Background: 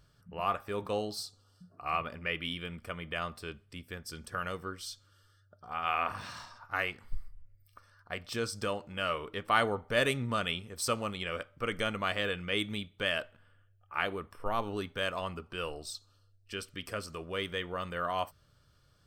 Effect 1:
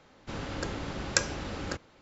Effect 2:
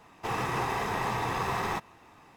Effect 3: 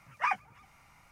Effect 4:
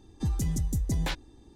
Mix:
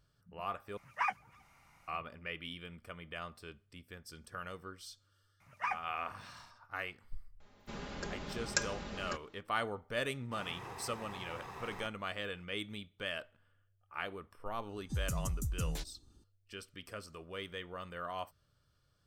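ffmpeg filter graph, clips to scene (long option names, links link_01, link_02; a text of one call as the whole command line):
ffmpeg -i bed.wav -i cue0.wav -i cue1.wav -i cue2.wav -i cue3.wav -filter_complex "[3:a]asplit=2[link_01][link_02];[0:a]volume=-8dB[link_03];[1:a]aecho=1:1:4.9:0.62[link_04];[4:a]bass=frequency=250:gain=10,treble=frequency=4000:gain=15[link_05];[link_03]asplit=2[link_06][link_07];[link_06]atrim=end=0.774[link_08];[link_01]atrim=end=1.11,asetpts=PTS-STARTPTS,volume=-4dB[link_09];[link_07]atrim=start=1.876[link_10];[link_02]atrim=end=1.11,asetpts=PTS-STARTPTS,volume=-6.5dB,afade=type=in:duration=0.004:curve=hsin,afade=type=out:start_time=1.106:duration=0.004:curve=hsin,adelay=5400[link_11];[link_04]atrim=end=2.01,asetpts=PTS-STARTPTS,volume=-8dB,afade=type=in:duration=0.004:curve=hsin,afade=type=out:start_time=2.006:duration=0.004:curve=hsin,adelay=7400[link_12];[2:a]atrim=end=2.36,asetpts=PTS-STARTPTS,volume=-17dB,afade=type=in:duration=0.004:curve=hsin,afade=type=out:start_time=2.356:duration=0.004:curve=hsin,adelay=10080[link_13];[link_05]atrim=end=1.55,asetpts=PTS-STARTPTS,volume=-17.5dB,afade=type=in:duration=0.004:curve=hsin,afade=type=out:start_time=1.546:duration=0.004:curve=hsin,adelay=14690[link_14];[link_08][link_09]acrossfade=duration=0.004:curve1=hsin:curve2=hsin[link_15];[link_15][link_10]acrossfade=duration=0.004:curve1=hsin:curve2=hsin[link_16];[link_16][link_11][link_12][link_13][link_14]amix=inputs=5:normalize=0" out.wav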